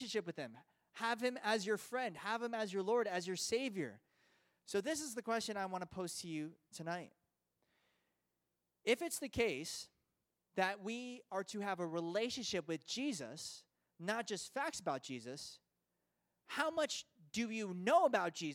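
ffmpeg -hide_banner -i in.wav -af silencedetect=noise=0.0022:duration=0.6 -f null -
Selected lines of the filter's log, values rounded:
silence_start: 3.95
silence_end: 4.68 | silence_duration: 0.72
silence_start: 7.08
silence_end: 8.86 | silence_duration: 1.77
silence_start: 9.86
silence_end: 10.57 | silence_duration: 0.71
silence_start: 15.56
silence_end: 16.49 | silence_duration: 0.94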